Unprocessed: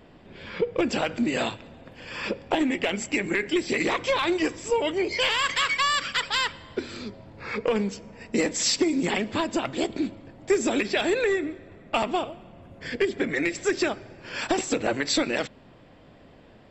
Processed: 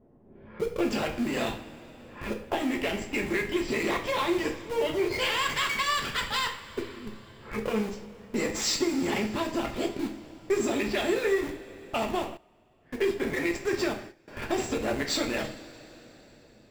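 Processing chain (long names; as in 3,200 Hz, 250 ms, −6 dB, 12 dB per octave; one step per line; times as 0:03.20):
low-pass that shuts in the quiet parts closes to 560 Hz, open at −21.5 dBFS
in parallel at −4 dB: comparator with hysteresis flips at −28.5 dBFS
on the sum: coupled-rooms reverb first 0.43 s, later 4.2 s, from −20 dB, DRR 1.5 dB
0:12.37–0:14.28: noise gate −33 dBFS, range −15 dB
level −8 dB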